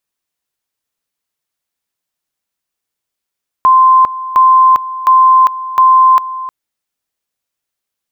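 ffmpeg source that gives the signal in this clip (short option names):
-f lavfi -i "aevalsrc='pow(10,(-3.5-15.5*gte(mod(t,0.71),0.4))/20)*sin(2*PI*1040*t)':d=2.84:s=44100"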